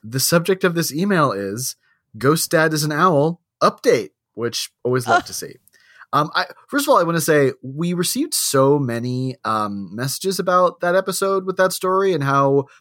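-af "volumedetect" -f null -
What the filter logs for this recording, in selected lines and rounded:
mean_volume: -19.1 dB
max_volume: -3.0 dB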